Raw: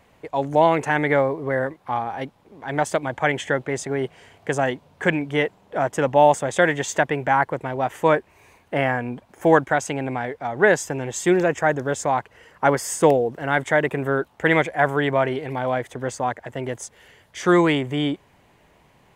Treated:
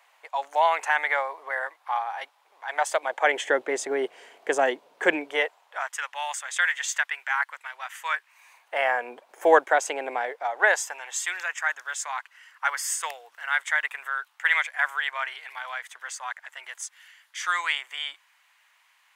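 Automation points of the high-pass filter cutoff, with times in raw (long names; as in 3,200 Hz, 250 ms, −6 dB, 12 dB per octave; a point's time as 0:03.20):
high-pass filter 24 dB per octave
0:02.68 790 Hz
0:03.55 340 Hz
0:05.14 340 Hz
0:05.95 1,300 Hz
0:08.18 1,300 Hz
0:09.11 440 Hz
0:10.17 440 Hz
0:11.34 1,200 Hz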